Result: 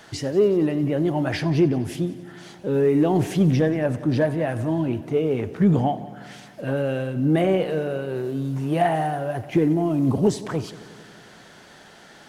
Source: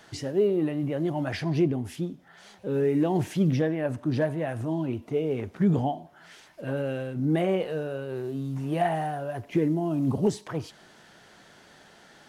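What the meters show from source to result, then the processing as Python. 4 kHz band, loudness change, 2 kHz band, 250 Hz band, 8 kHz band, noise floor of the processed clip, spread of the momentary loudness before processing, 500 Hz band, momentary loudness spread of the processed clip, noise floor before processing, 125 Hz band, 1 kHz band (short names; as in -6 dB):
+5.5 dB, +5.5 dB, +5.5 dB, +5.5 dB, n/a, -48 dBFS, 10 LU, +5.5 dB, 11 LU, -55 dBFS, +5.0 dB, +5.5 dB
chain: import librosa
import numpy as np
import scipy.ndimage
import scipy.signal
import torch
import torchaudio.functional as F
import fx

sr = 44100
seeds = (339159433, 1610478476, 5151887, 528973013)

p1 = 10.0 ** (-23.5 / 20.0) * np.tanh(x / 10.0 ** (-23.5 / 20.0))
p2 = x + (p1 * 10.0 ** (-10.5 / 20.0))
p3 = fx.echo_heads(p2, sr, ms=91, heads='first and second', feedback_pct=65, wet_db=-21)
y = p3 * 10.0 ** (3.5 / 20.0)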